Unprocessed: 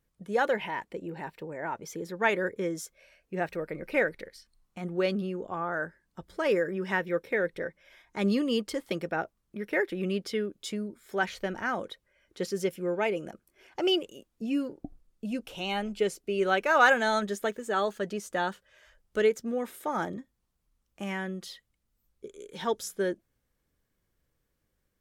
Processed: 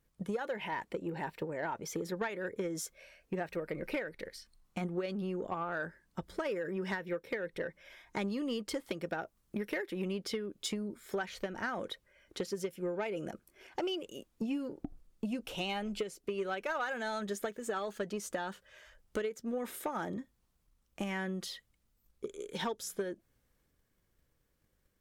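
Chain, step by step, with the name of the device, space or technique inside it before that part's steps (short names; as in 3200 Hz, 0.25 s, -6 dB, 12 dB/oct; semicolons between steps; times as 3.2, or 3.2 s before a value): drum-bus smash (transient shaper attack +7 dB, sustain +3 dB; compressor 12:1, threshold -31 dBFS, peak gain reduction 18.5 dB; soft clip -25.5 dBFS, distortion -19 dB); 9.06–10.08 high shelf 5800 Hz +5 dB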